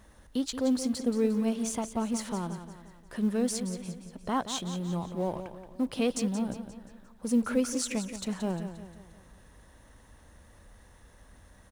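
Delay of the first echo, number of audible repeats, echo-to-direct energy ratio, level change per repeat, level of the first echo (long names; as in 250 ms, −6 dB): 176 ms, 4, −9.5 dB, −6.5 dB, −10.5 dB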